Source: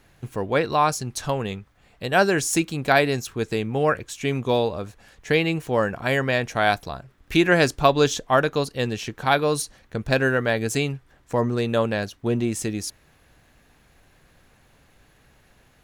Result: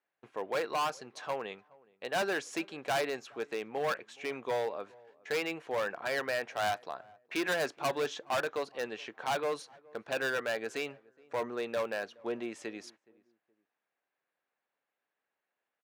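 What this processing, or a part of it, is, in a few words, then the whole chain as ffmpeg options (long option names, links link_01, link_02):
walkie-talkie: -filter_complex "[0:a]highpass=490,lowpass=2400,asoftclip=type=hard:threshold=-22dB,agate=range=-20dB:threshold=-52dB:ratio=16:detection=peak,highpass=100,highshelf=frequency=7600:gain=9.5,asplit=2[link_01][link_02];[link_02]adelay=420,lowpass=frequency=1000:poles=1,volume=-23.5dB,asplit=2[link_03][link_04];[link_04]adelay=420,lowpass=frequency=1000:poles=1,volume=0.32[link_05];[link_01][link_03][link_05]amix=inputs=3:normalize=0,volume=-5.5dB"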